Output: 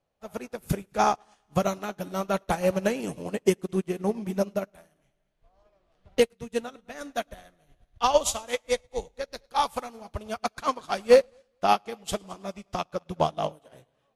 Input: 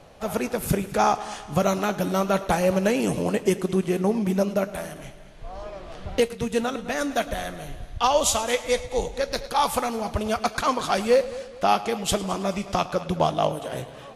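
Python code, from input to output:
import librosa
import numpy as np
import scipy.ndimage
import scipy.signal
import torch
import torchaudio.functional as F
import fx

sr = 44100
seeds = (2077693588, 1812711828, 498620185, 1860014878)

y = fx.upward_expand(x, sr, threshold_db=-37.0, expansion=2.5)
y = y * librosa.db_to_amplitude(4.0)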